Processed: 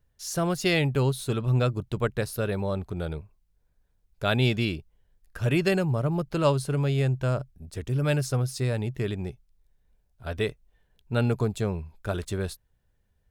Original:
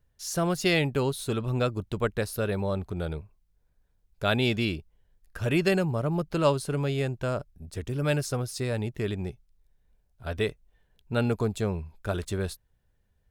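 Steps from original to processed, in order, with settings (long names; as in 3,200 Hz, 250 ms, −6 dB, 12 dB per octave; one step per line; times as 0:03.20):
dynamic equaliser 130 Hz, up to +8 dB, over −46 dBFS, Q 6.1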